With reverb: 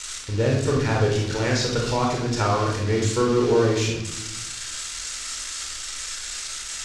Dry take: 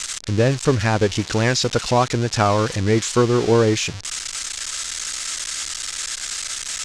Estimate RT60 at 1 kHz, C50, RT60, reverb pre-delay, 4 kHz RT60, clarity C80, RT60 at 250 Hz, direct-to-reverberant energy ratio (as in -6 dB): 0.80 s, 2.0 dB, 0.90 s, 24 ms, 0.65 s, 6.5 dB, 1.4 s, -2.0 dB